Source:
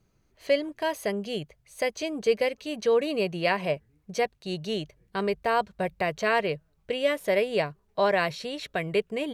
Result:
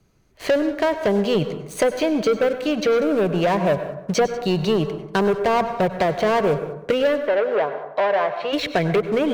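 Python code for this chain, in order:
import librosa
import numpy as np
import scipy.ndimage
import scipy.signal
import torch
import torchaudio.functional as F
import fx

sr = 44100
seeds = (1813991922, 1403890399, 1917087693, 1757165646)

p1 = fx.env_lowpass_down(x, sr, base_hz=1100.0, full_db=-23.5)
p2 = fx.leveller(p1, sr, passes=3)
p3 = fx.rider(p2, sr, range_db=10, speed_s=0.5)
p4 = p2 + F.gain(torch.from_numpy(p3), 2.5).numpy()
p5 = fx.bandpass_edges(p4, sr, low_hz=fx.line((7.18, 420.0), (8.52, 640.0)), high_hz=2600.0, at=(7.18, 8.52), fade=0.02)
p6 = p5 + fx.echo_single(p5, sr, ms=189, db=-21.0, dry=0)
p7 = fx.rev_plate(p6, sr, seeds[0], rt60_s=0.71, hf_ratio=0.4, predelay_ms=85, drr_db=10.5)
p8 = fx.band_squash(p7, sr, depth_pct=40)
y = F.gain(torch.from_numpy(p8), -6.5).numpy()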